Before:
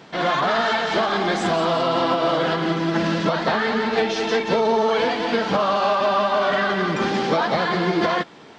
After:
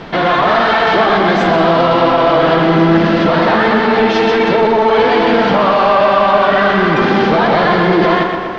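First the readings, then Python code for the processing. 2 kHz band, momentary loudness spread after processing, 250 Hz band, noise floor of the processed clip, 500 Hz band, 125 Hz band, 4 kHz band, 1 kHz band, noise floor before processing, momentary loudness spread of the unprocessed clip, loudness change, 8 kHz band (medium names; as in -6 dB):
+9.0 dB, 1 LU, +10.5 dB, -17 dBFS, +9.5 dB, +10.5 dB, +6.0 dB, +9.5 dB, -44 dBFS, 2 LU, +9.5 dB, no reading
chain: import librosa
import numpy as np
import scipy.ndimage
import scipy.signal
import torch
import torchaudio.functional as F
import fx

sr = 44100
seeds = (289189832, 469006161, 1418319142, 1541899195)

p1 = fx.high_shelf(x, sr, hz=5700.0, db=6.5)
p2 = fx.over_compress(p1, sr, threshold_db=-26.0, ratio=-1.0)
p3 = p1 + (p2 * 10.0 ** (-3.0 / 20.0))
p4 = fx.fold_sine(p3, sr, drive_db=4, ceiling_db=-7.0)
p5 = fx.dmg_noise_colour(p4, sr, seeds[0], colour='pink', level_db=-39.0)
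p6 = fx.air_absorb(p5, sr, metres=250.0)
y = fx.echo_tape(p6, sr, ms=125, feedback_pct=80, wet_db=-3, lp_hz=3000.0, drive_db=8.0, wow_cents=19)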